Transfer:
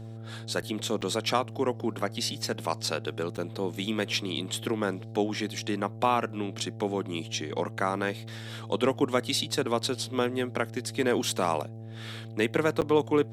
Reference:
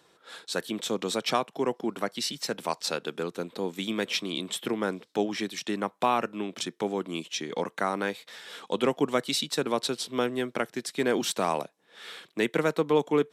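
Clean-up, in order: de-click; de-hum 112.1 Hz, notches 7; interpolate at 0.62/1.01/3.37/12.81, 8.3 ms

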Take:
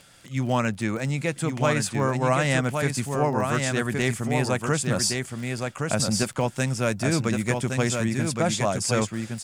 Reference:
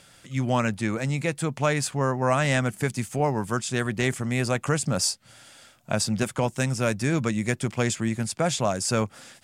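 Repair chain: de-click; inverse comb 1.117 s -4.5 dB

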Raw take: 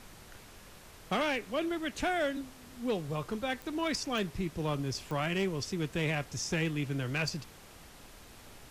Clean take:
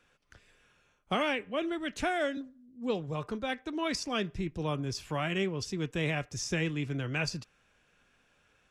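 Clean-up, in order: clip repair -24 dBFS; de-click; noise print and reduce 16 dB

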